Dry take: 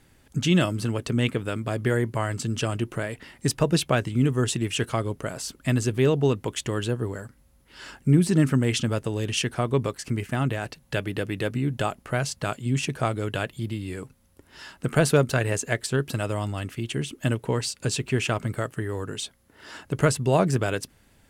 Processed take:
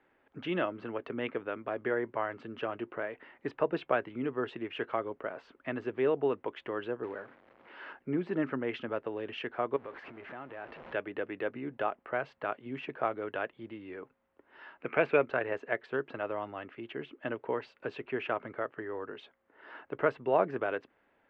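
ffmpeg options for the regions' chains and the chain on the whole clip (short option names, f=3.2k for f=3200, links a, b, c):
-filter_complex "[0:a]asettb=1/sr,asplit=3[a][b][c];[a]atrim=end=7.034[d];[b]atrim=start=7.03:end=7.93,asetpts=PTS-STARTPTS,afade=t=in:d=0.004:c=qsin,afade=t=out:st=0.896:d=0.004:c=qsin,aeval=exprs='val(0)+0.5*0.00944*sgn(val(0))':c=same,highpass=99,acrusher=bits=4:mode=log:mix=0:aa=0.000001[e];[c]atrim=start=7.926[f];[d][e]acrossfade=d=0.004:c1=hsin:c2=qsin[g];[g][f]acrossfade=d=0.004:c1=qsin:c2=hsin,asettb=1/sr,asplit=3[h][i][j];[h]atrim=end=9.764[k];[i]atrim=start=9.76:end=10.94,asetpts=PTS-STARTPTS,afade=t=in:d=0.004:c=qsin,afade=t=out:st=1.176:d=0.004:c=qsin,aeval=exprs='val(0)+0.5*0.0355*sgn(val(0))':c=same,acompressor=threshold=-33dB:ratio=4:attack=3.2:release=140:knee=1:detection=peak[l];[j]atrim=start=10.936[m];[k][l]acrossfade=d=0.004:c1=hsin:c2=qsin[n];[n][m]acrossfade=d=0.004:c1=qsin:c2=hsin,asettb=1/sr,asplit=3[o][p][q];[o]atrim=end=14.804[r];[p]atrim=start=14.8:end=15.26,asetpts=PTS-STARTPTS,afade=t=in:d=0.004:c=qsin,afade=t=out:st=0.456:d=0.004:c=qsin,deesser=0.5,equalizer=f=2.4k:t=o:w=0.29:g=14.5[s];[q]atrim=start=15.256[t];[r][s]acrossfade=d=0.004:c1=hsin:c2=qsin[u];[u][t]acrossfade=d=0.004:c1=qsin:c2=hsin,lowpass=f=3.3k:w=0.5412,lowpass=f=3.3k:w=1.3066,acrossover=split=310 2200:gain=0.0631 1 0.158[v][w][x];[v][w][x]amix=inputs=3:normalize=0,volume=-3.5dB"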